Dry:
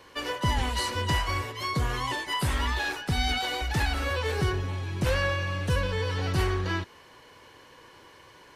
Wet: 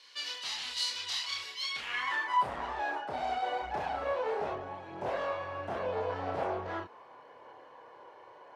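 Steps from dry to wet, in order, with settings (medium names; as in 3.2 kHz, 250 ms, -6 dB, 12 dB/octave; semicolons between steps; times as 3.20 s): sine folder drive 10 dB, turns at -14.5 dBFS; chorus voices 2, 0.4 Hz, delay 30 ms, depth 2.4 ms; band-pass sweep 4.3 kHz -> 710 Hz, 1.61–2.52 s; trim -3.5 dB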